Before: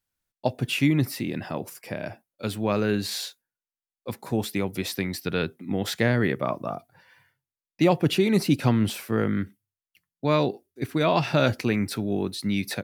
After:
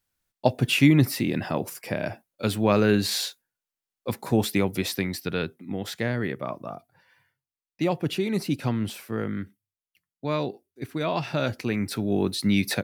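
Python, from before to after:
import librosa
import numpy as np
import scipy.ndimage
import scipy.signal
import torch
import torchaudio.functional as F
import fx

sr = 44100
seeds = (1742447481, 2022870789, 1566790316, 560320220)

y = fx.gain(x, sr, db=fx.line((4.55, 4.0), (5.88, -5.0), (11.52, -5.0), (12.3, 4.0)))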